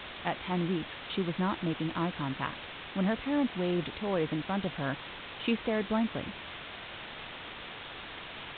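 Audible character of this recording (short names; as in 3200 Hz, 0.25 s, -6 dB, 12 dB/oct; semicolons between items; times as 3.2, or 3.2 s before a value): a quantiser's noise floor 6-bit, dither triangular; µ-law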